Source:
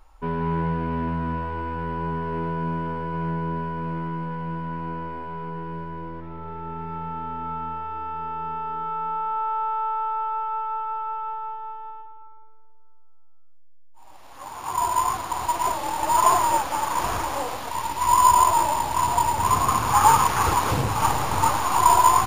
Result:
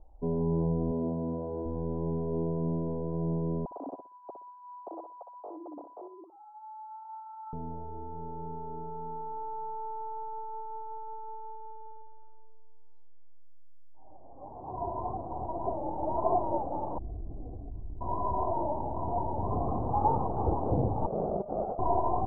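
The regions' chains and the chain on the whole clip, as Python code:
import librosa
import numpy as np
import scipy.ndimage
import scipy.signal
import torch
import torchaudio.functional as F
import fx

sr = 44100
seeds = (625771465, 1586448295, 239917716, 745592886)

y = fx.chain(x, sr, fx.highpass(hz=200.0, slope=6),
    fx.peak_eq(hz=500.0, db=4.0, octaves=0.73),
    fx.running_max(window=5), at=(0.91, 1.66))
y = fx.chain(y, sr, fx.sine_speech(),
    fx.low_shelf(hz=430.0, db=-5.5),
    fx.echo_feedback(ms=61, feedback_pct=20, wet_db=-7.0), at=(3.65, 7.53))
y = fx.chain(y, sr, fx.lower_of_two(delay_ms=2.8),
    fx.tone_stack(knobs='10-0-1'),
    fx.env_flatten(amount_pct=70), at=(16.98, 18.01))
y = fx.chain(y, sr, fx.highpass(hz=46.0, slope=12),
    fx.over_compress(threshold_db=-25.0, ratio=-0.5),
    fx.ring_mod(carrier_hz=290.0), at=(21.06, 21.79))
y = scipy.signal.sosfilt(scipy.signal.ellip(4, 1.0, 70, 730.0, 'lowpass', fs=sr, output='sos'), y)
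y = fx.dynamic_eq(y, sr, hz=120.0, q=1.0, threshold_db=-40.0, ratio=4.0, max_db=-4)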